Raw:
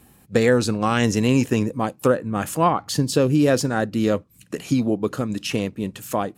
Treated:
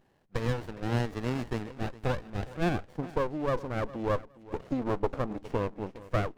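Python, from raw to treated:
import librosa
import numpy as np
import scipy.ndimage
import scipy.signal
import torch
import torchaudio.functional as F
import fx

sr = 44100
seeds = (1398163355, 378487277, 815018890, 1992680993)

y = fx.filter_sweep_bandpass(x, sr, from_hz=1600.0, to_hz=630.0, start_s=2.19, end_s=2.87, q=2.1)
y = fx.rider(y, sr, range_db=4, speed_s=0.5)
y = fx.echo_feedback(y, sr, ms=411, feedback_pct=20, wet_db=-18)
y = fx.running_max(y, sr, window=33)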